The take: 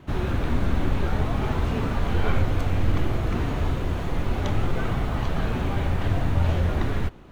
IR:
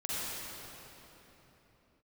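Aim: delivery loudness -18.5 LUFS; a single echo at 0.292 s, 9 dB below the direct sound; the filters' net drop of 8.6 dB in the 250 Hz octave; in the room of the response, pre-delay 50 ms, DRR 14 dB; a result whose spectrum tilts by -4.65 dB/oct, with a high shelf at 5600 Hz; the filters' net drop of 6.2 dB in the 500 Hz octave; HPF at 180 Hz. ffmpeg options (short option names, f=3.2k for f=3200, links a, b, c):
-filter_complex "[0:a]highpass=180,equalizer=f=250:t=o:g=-8,equalizer=f=500:t=o:g=-5.5,highshelf=f=5.6k:g=7.5,aecho=1:1:292:0.355,asplit=2[a][b];[1:a]atrim=start_sample=2205,adelay=50[c];[b][c]afir=irnorm=-1:irlink=0,volume=-20dB[d];[a][d]amix=inputs=2:normalize=0,volume=14.5dB"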